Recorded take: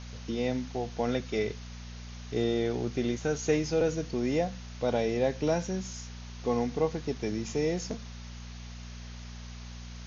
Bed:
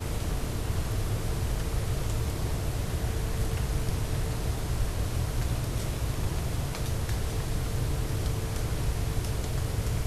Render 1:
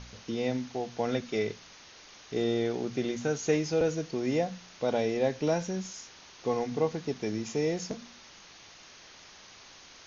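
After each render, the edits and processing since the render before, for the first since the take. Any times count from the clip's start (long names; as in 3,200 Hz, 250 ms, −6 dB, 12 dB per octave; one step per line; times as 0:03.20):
hum removal 60 Hz, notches 4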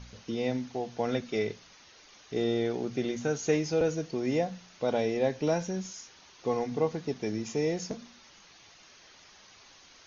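broadband denoise 6 dB, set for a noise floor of −52 dBFS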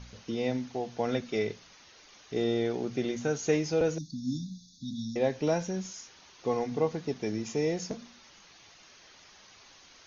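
0:03.98–0:05.16: linear-phase brick-wall band-stop 300–3,400 Hz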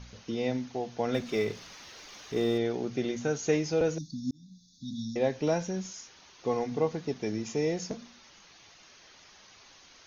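0:01.14–0:02.58: mu-law and A-law mismatch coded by mu
0:04.31–0:04.96: fade in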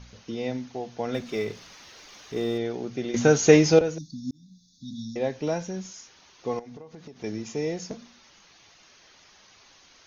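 0:03.14–0:03.79: clip gain +11.5 dB
0:06.59–0:07.24: downward compressor 16 to 1, threshold −39 dBFS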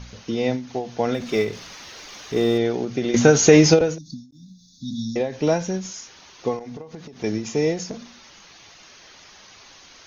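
boost into a limiter +8 dB
every ending faded ahead of time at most 130 dB per second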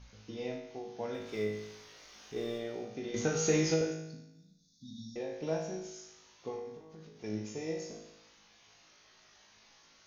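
flanger 0.23 Hz, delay 5.3 ms, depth 9.3 ms, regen −86%
tuned comb filter 53 Hz, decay 0.87 s, harmonics all, mix 90%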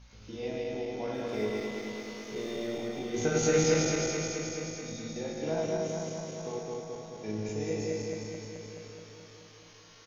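feedback delay that plays each chunk backwards 107 ms, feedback 84%, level −1 dB
repeating echo 446 ms, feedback 53%, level −13 dB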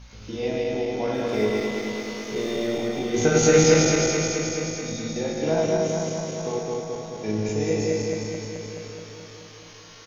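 level +9 dB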